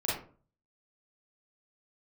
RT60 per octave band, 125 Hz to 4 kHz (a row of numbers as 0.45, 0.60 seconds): 0.65, 0.50, 0.45, 0.40, 0.30, 0.25 seconds